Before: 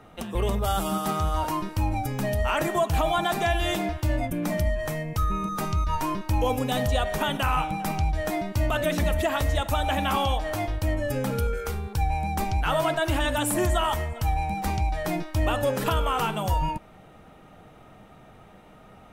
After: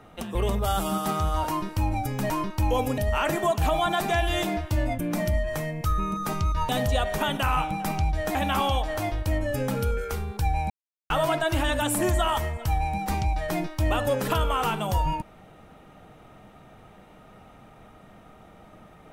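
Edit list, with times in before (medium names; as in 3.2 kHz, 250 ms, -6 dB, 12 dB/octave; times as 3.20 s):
6.01–6.69 s: move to 2.30 s
8.35–9.91 s: delete
12.26–12.66 s: mute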